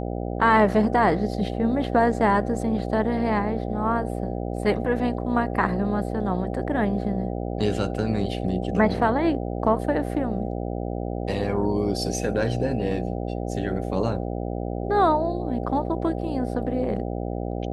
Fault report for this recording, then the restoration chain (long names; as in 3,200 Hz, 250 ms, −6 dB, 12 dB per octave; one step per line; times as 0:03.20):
mains buzz 60 Hz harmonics 13 −29 dBFS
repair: hum removal 60 Hz, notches 13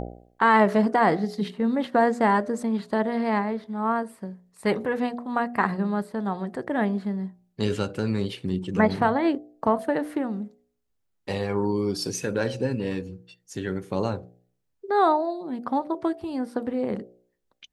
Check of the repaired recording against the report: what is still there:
none of them is left